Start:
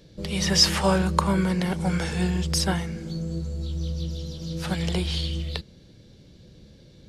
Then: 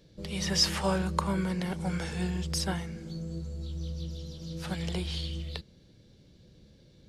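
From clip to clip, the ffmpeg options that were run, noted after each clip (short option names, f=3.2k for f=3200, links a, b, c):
-af "aeval=exprs='0.631*(cos(1*acos(clip(val(0)/0.631,-1,1)))-cos(1*PI/2))+0.0282*(cos(2*acos(clip(val(0)/0.631,-1,1)))-cos(2*PI/2))':c=same,volume=-7dB"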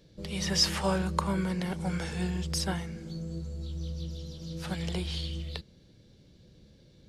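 -af anull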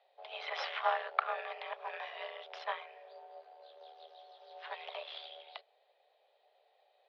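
-af "aeval=exprs='0.282*(cos(1*acos(clip(val(0)/0.282,-1,1)))-cos(1*PI/2))+0.0708*(cos(2*acos(clip(val(0)/0.282,-1,1)))-cos(2*PI/2))+0.0224*(cos(6*acos(clip(val(0)/0.282,-1,1)))-cos(6*PI/2))+0.0126*(cos(7*acos(clip(val(0)/0.282,-1,1)))-cos(7*PI/2))':c=same,highpass=f=330:t=q:w=0.5412,highpass=f=330:t=q:w=1.307,lowpass=f=3.3k:t=q:w=0.5176,lowpass=f=3.3k:t=q:w=0.7071,lowpass=f=3.3k:t=q:w=1.932,afreqshift=240,volume=-1.5dB"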